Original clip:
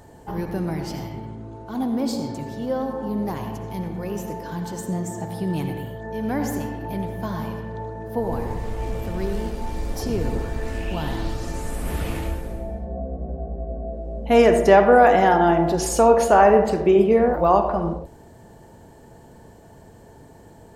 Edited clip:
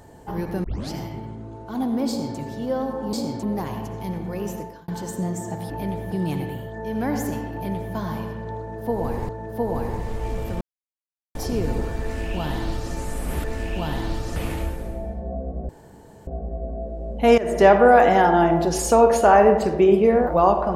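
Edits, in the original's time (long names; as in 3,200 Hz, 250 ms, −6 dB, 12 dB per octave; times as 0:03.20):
0:00.64: tape start 0.27 s
0:02.08–0:02.38: duplicate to 0:03.13
0:04.24–0:04.58: fade out
0:06.81–0:07.23: duplicate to 0:05.40
0:07.86–0:08.57: repeat, 2 plays
0:09.18–0:09.92: silence
0:10.59–0:11.51: duplicate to 0:12.01
0:13.34: splice in room tone 0.58 s
0:14.45–0:14.72: fade in, from −19.5 dB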